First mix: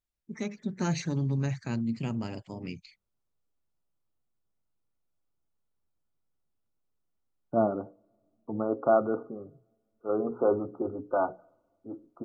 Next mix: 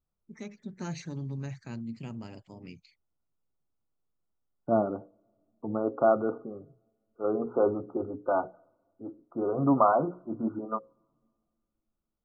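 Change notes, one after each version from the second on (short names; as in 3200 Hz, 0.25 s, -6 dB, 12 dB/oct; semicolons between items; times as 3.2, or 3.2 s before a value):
first voice -7.5 dB; second voice: entry -2.85 s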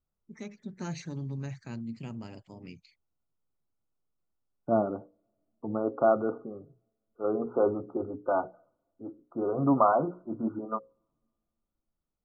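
second voice: send -7.0 dB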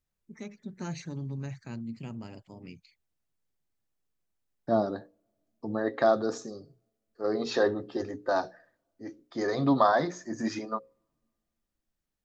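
second voice: remove brick-wall FIR low-pass 1500 Hz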